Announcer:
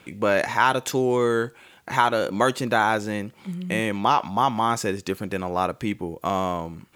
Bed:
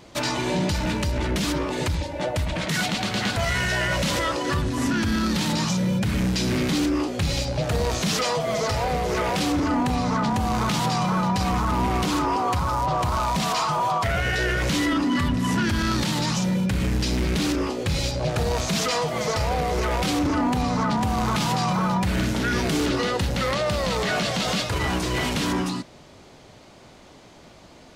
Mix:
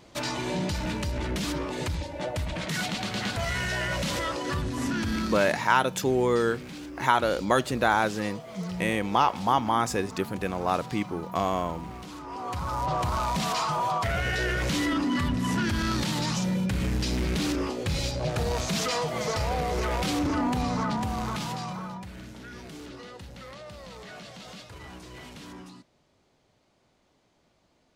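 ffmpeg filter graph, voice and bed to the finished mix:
-filter_complex "[0:a]adelay=5100,volume=-2.5dB[a];[1:a]volume=8.5dB,afade=t=out:st=5.18:d=0.45:silence=0.237137,afade=t=in:st=12.24:d=0.68:silence=0.199526,afade=t=out:st=20.66:d=1.46:silence=0.16788[b];[a][b]amix=inputs=2:normalize=0"

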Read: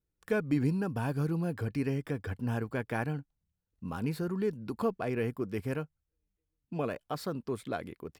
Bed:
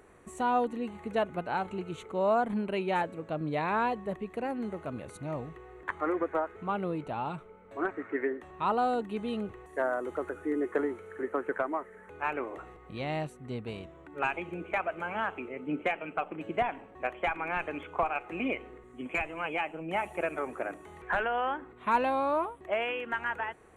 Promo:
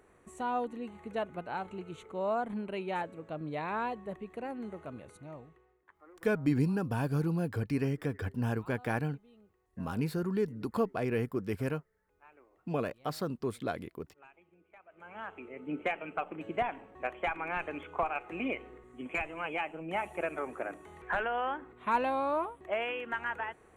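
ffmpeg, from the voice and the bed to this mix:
-filter_complex "[0:a]adelay=5950,volume=0.5dB[a];[1:a]volume=19dB,afade=t=out:st=4.84:d=0.97:silence=0.0841395,afade=t=in:st=14.87:d=1:silence=0.0595662[b];[a][b]amix=inputs=2:normalize=0"

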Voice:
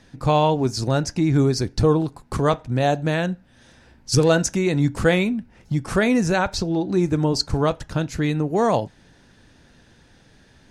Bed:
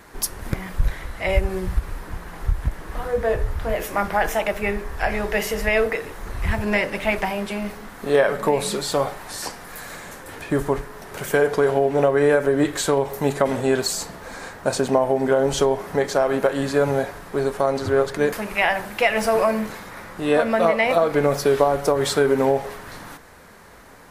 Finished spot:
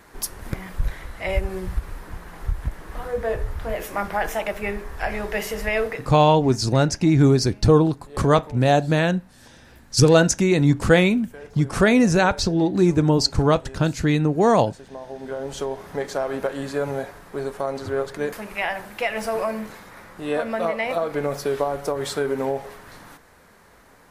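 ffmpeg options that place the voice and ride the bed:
-filter_complex "[0:a]adelay=5850,volume=2.5dB[a];[1:a]volume=13.5dB,afade=t=out:st=5.83:d=0.41:silence=0.105925,afade=t=in:st=14.86:d=1.19:silence=0.141254[b];[a][b]amix=inputs=2:normalize=0"

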